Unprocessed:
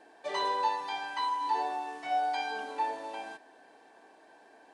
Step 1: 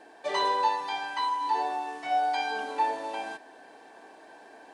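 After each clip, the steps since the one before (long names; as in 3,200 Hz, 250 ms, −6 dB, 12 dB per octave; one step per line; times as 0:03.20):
speech leveller within 4 dB 2 s
level +3 dB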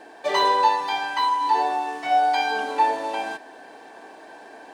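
running median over 3 samples
level +7 dB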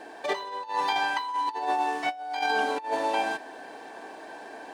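compressor whose output falls as the input rises −25 dBFS, ratio −0.5
level −2.5 dB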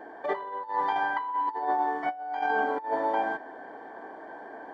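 Savitzky-Golay smoothing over 41 samples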